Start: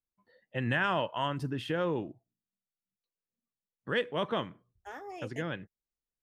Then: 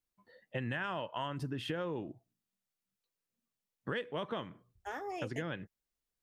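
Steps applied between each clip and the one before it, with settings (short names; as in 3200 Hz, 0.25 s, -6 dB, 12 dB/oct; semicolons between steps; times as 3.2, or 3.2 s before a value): compressor, threshold -38 dBFS, peak gain reduction 12.5 dB; gain +3.5 dB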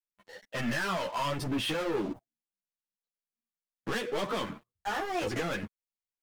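low shelf 150 Hz -7.5 dB; sample leveller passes 5; ensemble effect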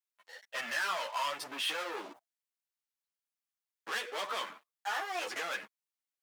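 HPF 820 Hz 12 dB/oct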